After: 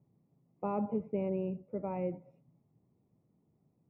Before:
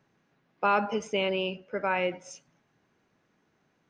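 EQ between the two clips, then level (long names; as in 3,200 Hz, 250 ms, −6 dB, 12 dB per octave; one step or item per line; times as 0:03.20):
moving average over 28 samples
high-frequency loss of the air 470 metres
parametric band 120 Hz +11.5 dB 1.9 octaves
−5.5 dB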